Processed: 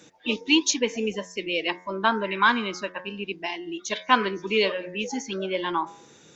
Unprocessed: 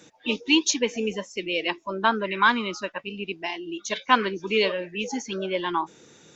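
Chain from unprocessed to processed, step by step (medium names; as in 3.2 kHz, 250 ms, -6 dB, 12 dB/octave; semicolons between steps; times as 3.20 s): de-hum 90.56 Hz, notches 24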